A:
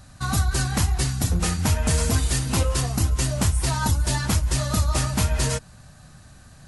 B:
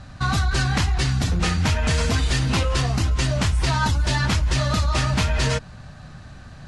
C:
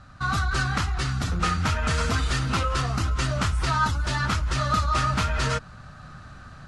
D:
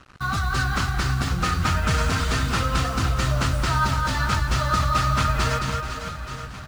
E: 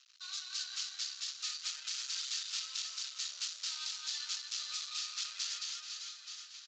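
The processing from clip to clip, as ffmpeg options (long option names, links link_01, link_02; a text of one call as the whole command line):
ffmpeg -i in.wav -filter_complex "[0:a]lowpass=4000,acrossover=split=1400[link_01][link_02];[link_01]alimiter=limit=-22dB:level=0:latency=1[link_03];[link_03][link_02]amix=inputs=2:normalize=0,volume=7dB" out.wav
ffmpeg -i in.wav -af "equalizer=frequency=1300:width=3.7:gain=12.5,dynaudnorm=framelen=190:gausssize=3:maxgain=5.5dB,volume=-9dB" out.wav
ffmpeg -i in.wav -filter_complex "[0:a]acrusher=bits=6:mix=0:aa=0.5,asplit=2[link_01][link_02];[link_02]aecho=0:1:220|506|877.8|1361|1989:0.631|0.398|0.251|0.158|0.1[link_03];[link_01][link_03]amix=inputs=2:normalize=0" out.wav
ffmpeg -i in.wav -af "aresample=16000,asoftclip=type=tanh:threshold=-21.5dB,aresample=44100,asuperpass=centerf=5400:order=4:qfactor=1.3" out.wav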